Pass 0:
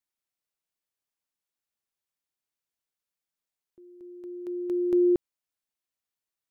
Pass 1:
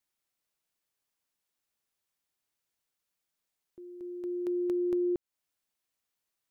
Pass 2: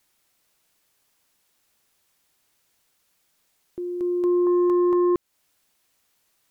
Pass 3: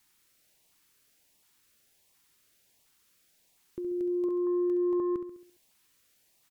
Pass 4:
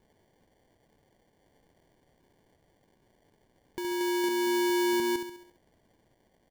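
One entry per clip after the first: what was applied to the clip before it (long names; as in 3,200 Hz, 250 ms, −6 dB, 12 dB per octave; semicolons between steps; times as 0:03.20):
downward compressor 6 to 1, threshold −33 dBFS, peak gain reduction 12.5 dB; level +4.5 dB
in parallel at +3 dB: brickwall limiter −30.5 dBFS, peak gain reduction 9 dB; on the sum: sine wavefolder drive 5 dB, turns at −17.5 dBFS
downward compressor 2.5 to 1, threshold −36 dBFS, peak gain reduction 11 dB; repeating echo 68 ms, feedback 51%, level −9 dB; auto-filter notch saw up 1.4 Hz 490–1,600 Hz
sample-rate reduction 1,300 Hz, jitter 0%; level +1 dB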